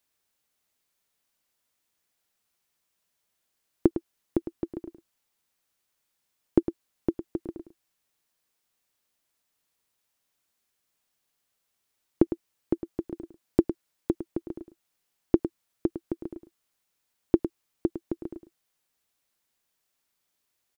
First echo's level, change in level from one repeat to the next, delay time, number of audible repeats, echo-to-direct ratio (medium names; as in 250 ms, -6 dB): -11.0 dB, no regular repeats, 106 ms, 1, -11.0 dB